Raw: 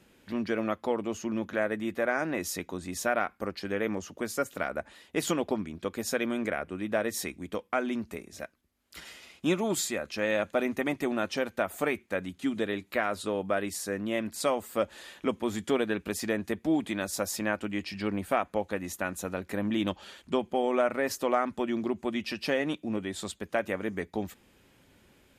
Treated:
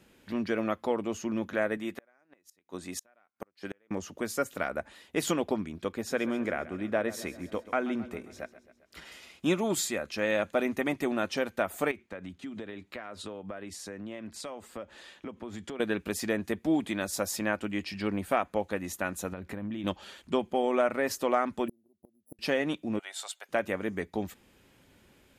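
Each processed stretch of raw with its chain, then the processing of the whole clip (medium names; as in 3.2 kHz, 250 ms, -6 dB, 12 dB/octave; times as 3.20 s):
1.77–3.91 s: bass shelf 160 Hz -11.5 dB + inverted gate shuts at -23 dBFS, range -37 dB
5.92–9.12 s: treble shelf 4.6 kHz -9.5 dB + feedback delay 133 ms, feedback 58%, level -16 dB
11.91–15.80 s: compression 12:1, threshold -35 dBFS + distance through air 54 m + three bands expanded up and down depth 40%
19.32–19.84 s: compression, threshold -36 dBFS + tone controls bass +6 dB, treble -6 dB
21.68–22.39 s: sorted samples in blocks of 8 samples + inverse Chebyshev band-stop 1.9–4.4 kHz, stop band 70 dB + inverted gate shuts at -24 dBFS, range -37 dB
22.99–23.49 s: high-pass 680 Hz 24 dB/octave + comb 1.4 ms, depth 35%
whole clip: none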